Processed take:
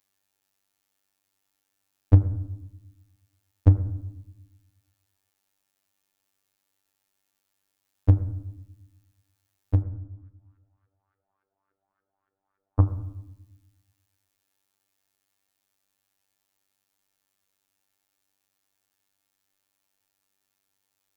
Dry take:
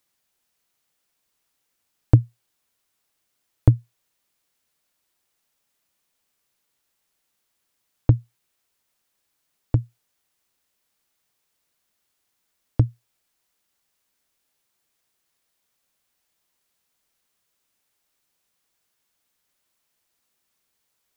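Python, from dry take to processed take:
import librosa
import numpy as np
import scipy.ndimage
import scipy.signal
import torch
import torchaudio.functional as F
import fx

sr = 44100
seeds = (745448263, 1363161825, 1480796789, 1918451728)

y = fx.filter_lfo_lowpass(x, sr, shape='saw_up', hz=3.5, low_hz=410.0, high_hz=1500.0, q=5.2, at=(9.81, 12.85), fade=0.02)
y = fx.robotise(y, sr, hz=97.5)
y = fx.rev_fdn(y, sr, rt60_s=0.95, lf_ratio=1.45, hf_ratio=0.35, size_ms=67.0, drr_db=9.5)
y = y * librosa.db_to_amplitude(-1.0)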